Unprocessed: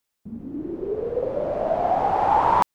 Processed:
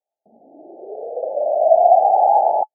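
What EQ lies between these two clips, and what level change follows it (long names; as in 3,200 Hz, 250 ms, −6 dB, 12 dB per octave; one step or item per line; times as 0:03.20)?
high-pass with resonance 670 Hz, resonance Q 6.1
Chebyshev low-pass filter 860 Hz, order 10
−2.5 dB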